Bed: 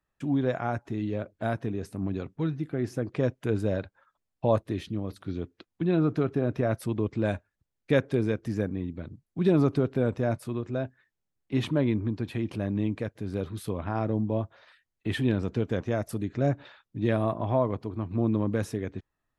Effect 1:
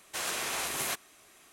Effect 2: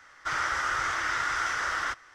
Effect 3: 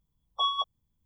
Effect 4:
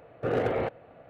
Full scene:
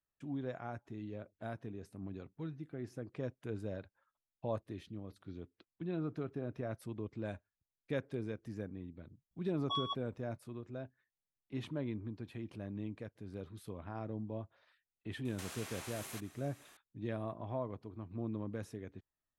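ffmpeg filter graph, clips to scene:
-filter_complex "[0:a]volume=0.2[s0];[1:a]acompressor=threshold=0.00891:ratio=6:attack=3.2:release=140:knee=1:detection=peak[s1];[3:a]atrim=end=1.05,asetpts=PTS-STARTPTS,volume=0.316,afade=t=in:d=0.004:c=hsin,afade=t=out:st=1.046:d=0.004:c=hsin,adelay=9310[s2];[s1]atrim=end=1.52,asetpts=PTS-STARTPTS,volume=0.631,afade=t=in:d=0.004:c=hsin,afade=t=out:st=1.516:d=0.004:c=hsin,adelay=15250[s3];[s0][s2][s3]amix=inputs=3:normalize=0"

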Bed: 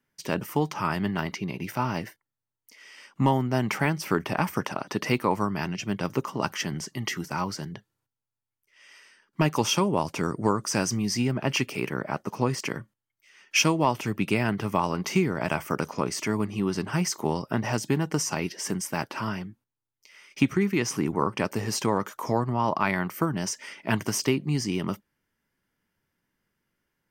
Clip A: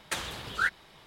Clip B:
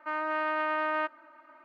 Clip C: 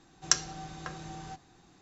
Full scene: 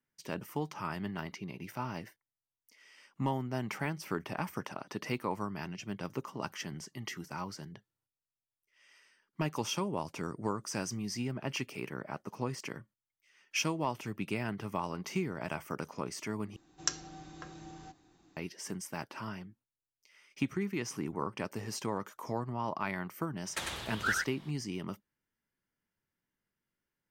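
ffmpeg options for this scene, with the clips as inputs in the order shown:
-filter_complex "[0:a]volume=0.299[s0];[3:a]equalizer=f=310:t=o:w=0.28:g=10[s1];[1:a]aecho=1:1:98:0.668[s2];[s0]asplit=2[s3][s4];[s3]atrim=end=16.564[s5];[s1]atrim=end=1.81,asetpts=PTS-STARTPTS,volume=0.422[s6];[s4]atrim=start=18.366[s7];[s2]atrim=end=1.06,asetpts=PTS-STARTPTS,volume=0.596,afade=t=in:d=0.004:c=hsin,afade=t=out:st=1.056:d=0.004:c=hsin,adelay=23450[s8];[s5][s6]acrossfade=d=0.004:c1=hsin:c2=hsin[s9];[s9][s7]acrossfade=d=0.004:c1=hsin:c2=hsin[s10];[s10][s8]amix=inputs=2:normalize=0"

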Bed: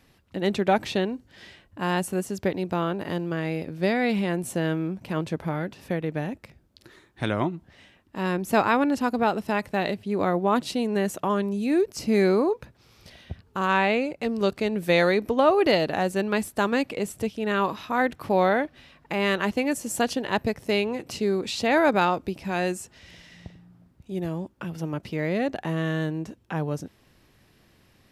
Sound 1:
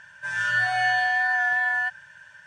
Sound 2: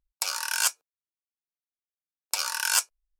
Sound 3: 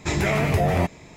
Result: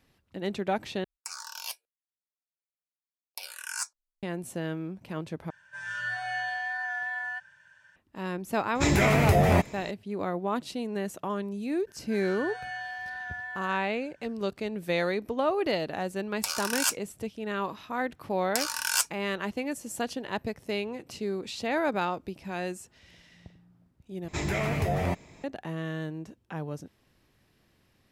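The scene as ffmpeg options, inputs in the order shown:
-filter_complex "[2:a]asplit=2[s0][s1];[1:a]asplit=2[s2][s3];[3:a]asplit=2[s4][s5];[0:a]volume=0.422[s6];[s0]asplit=2[s7][s8];[s8]afreqshift=-1.2[s9];[s7][s9]amix=inputs=2:normalize=1[s10];[s4]highshelf=f=9500:g=5[s11];[s3]aresample=32000,aresample=44100[s12];[s6]asplit=4[s13][s14][s15][s16];[s13]atrim=end=1.044[s17];[s10]atrim=end=3.19,asetpts=PTS-STARTPTS,volume=0.376[s18];[s14]atrim=start=4.226:end=5.504[s19];[s2]atrim=end=2.46,asetpts=PTS-STARTPTS,volume=0.316[s20];[s15]atrim=start=7.956:end=24.284[s21];[s5]atrim=end=1.16,asetpts=PTS-STARTPTS,volume=0.447[s22];[s16]atrim=start=25.436[s23];[s11]atrim=end=1.16,asetpts=PTS-STARTPTS,volume=0.944,afade=t=in:d=0.004:c=hsin,afade=t=out:st=1.156:d=0.004:c=hsin,adelay=8750[s24];[s12]atrim=end=2.46,asetpts=PTS-STARTPTS,volume=0.178,afade=t=in:d=0.004:c=hsin,afade=t=out:st=2.456:d=0.004:c=hsin,adelay=11870[s25];[s1]atrim=end=3.19,asetpts=PTS-STARTPTS,volume=0.75,afade=t=in:d=0.004:c=hsin,afade=t=out:st=3.186:d=0.004:c=hsin,adelay=16220[s26];[s17][s18]acrossfade=d=0.004:c1=hsin:c2=hsin[s27];[s27][s19]acrossfade=d=0.004:c1=hsin:c2=hsin[s28];[s28][s20]acrossfade=d=0.004:c1=hsin:c2=hsin[s29];[s29][s21]acrossfade=d=0.004:c1=hsin:c2=hsin[s30];[s30][s22]acrossfade=d=0.004:c1=hsin:c2=hsin[s31];[s31][s23]acrossfade=d=0.004:c1=hsin:c2=hsin[s32];[s32][s24][s25][s26]amix=inputs=4:normalize=0"

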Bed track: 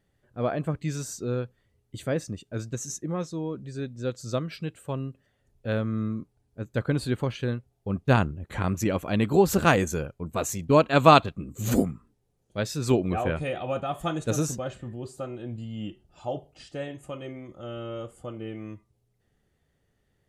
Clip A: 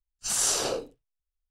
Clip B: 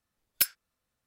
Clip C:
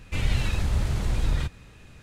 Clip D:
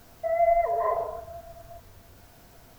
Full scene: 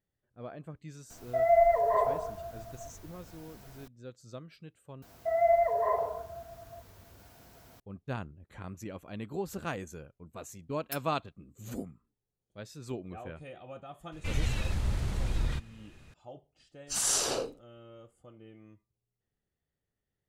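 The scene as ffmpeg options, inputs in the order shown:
-filter_complex "[4:a]asplit=2[s0][s1];[0:a]volume=0.158[s2];[s1]highpass=44[s3];[s2]asplit=2[s4][s5];[s4]atrim=end=5.024[s6];[s3]atrim=end=2.78,asetpts=PTS-STARTPTS,volume=0.75[s7];[s5]atrim=start=7.796[s8];[s0]atrim=end=2.78,asetpts=PTS-STARTPTS,volume=0.944,afade=t=in:d=0.004:c=hsin,afade=t=out:st=2.776:d=0.004:c=hsin,adelay=1100[s9];[2:a]atrim=end=1.06,asetpts=PTS-STARTPTS,volume=0.178,afade=t=in:d=0.004:c=hsin,afade=t=out:st=1.056:d=0.004:c=hsin,adelay=10510[s10];[3:a]atrim=end=2.02,asetpts=PTS-STARTPTS,volume=0.501,afade=t=in:d=0.004:c=hsin,afade=t=out:st=2.016:d=0.004:c=hsin,adelay=622692S[s11];[1:a]atrim=end=1.5,asetpts=PTS-STARTPTS,volume=0.708,afade=t=in:d=0.004:c=hsin,afade=t=out:st=1.496:d=0.004:c=hsin,adelay=16660[s12];[s6][s7]acrossfade=d=0.004:c1=hsin:c2=hsin[s13];[s13][s8]acrossfade=d=0.004:c1=hsin:c2=hsin[s14];[s14][s9][s10][s11][s12]amix=inputs=5:normalize=0"

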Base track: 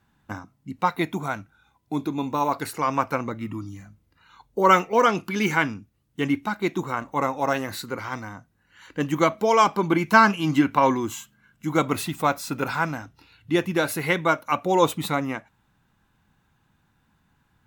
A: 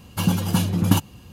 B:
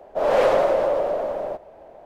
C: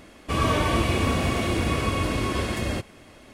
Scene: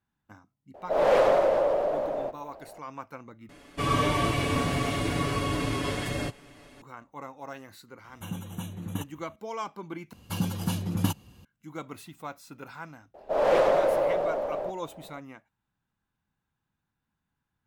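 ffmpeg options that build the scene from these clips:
-filter_complex "[2:a]asplit=2[s0][s1];[1:a]asplit=2[s2][s3];[0:a]volume=0.141[s4];[3:a]aecho=1:1:7:0.71[s5];[s2]asuperstop=centerf=4800:order=12:qfactor=2.8[s6];[s4]asplit=3[s7][s8][s9];[s7]atrim=end=3.494[s10];[s5]atrim=end=3.33,asetpts=PTS-STARTPTS,volume=0.596[s11];[s8]atrim=start=6.816:end=10.134[s12];[s3]atrim=end=1.32,asetpts=PTS-STARTPTS,volume=0.376[s13];[s9]atrim=start=11.446[s14];[s0]atrim=end=2.05,asetpts=PTS-STARTPTS,volume=0.708,afade=t=in:d=0.004:c=hsin,afade=t=out:st=2.046:d=0.004:c=hsin,adelay=740[s15];[s6]atrim=end=1.32,asetpts=PTS-STARTPTS,volume=0.158,afade=t=in:d=0.004:c=hsin,afade=t=out:st=1.316:d=0.004:c=hsin,adelay=8040[s16];[s1]atrim=end=2.05,asetpts=PTS-STARTPTS,volume=0.631,afade=t=in:d=0.004:c=hsin,afade=t=out:st=2.046:d=0.004:c=hsin,adelay=13140[s17];[s10][s11]acrossfade=d=0.004:c1=hsin:c2=hsin[s18];[s18][s12]acrossfade=d=0.004:c1=hsin:c2=hsin[s19];[s19][s13]acrossfade=d=0.004:c1=hsin:c2=hsin[s20];[s20][s14]acrossfade=d=0.004:c1=hsin:c2=hsin[s21];[s21][s15][s16][s17]amix=inputs=4:normalize=0"

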